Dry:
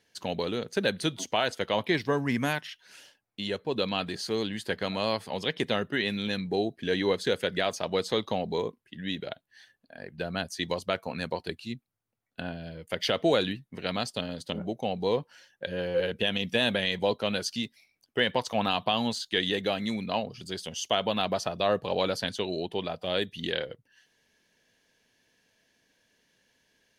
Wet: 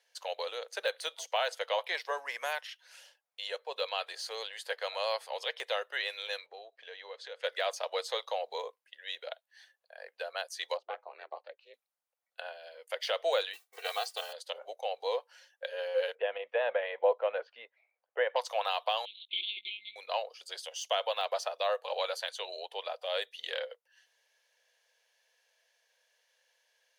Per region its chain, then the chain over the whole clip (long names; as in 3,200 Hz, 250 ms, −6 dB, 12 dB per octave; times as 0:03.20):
0:06.46–0:07.44: low-pass filter 4,300 Hz + downward compressor 2.5 to 1, threshold −40 dBFS
0:10.77–0:11.74: ring modulation 160 Hz + head-to-tape spacing loss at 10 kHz 39 dB
0:13.53–0:14.33: noise that follows the level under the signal 19 dB + comb filter 2.6 ms, depth 98%
0:16.15–0:18.36: low-pass filter 2,400 Hz 24 dB per octave + tilt shelving filter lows +6.5 dB, about 1,300 Hz
0:19.05–0:19.96: one-pitch LPC vocoder at 8 kHz 210 Hz + linear-phase brick-wall band-stop 380–2,100 Hz
0:21.63–0:22.42: low-shelf EQ 270 Hz −10.5 dB + notch filter 5,200 Hz, Q 7.8
whole clip: de-essing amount 75%; Chebyshev high-pass filter 500 Hz, order 5; level −2.5 dB